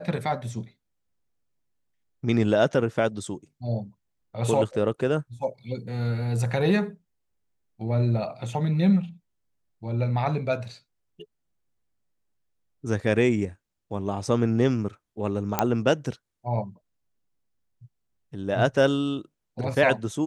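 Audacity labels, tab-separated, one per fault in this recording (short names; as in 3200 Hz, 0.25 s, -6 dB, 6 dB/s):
15.590000	15.590000	pop -6 dBFS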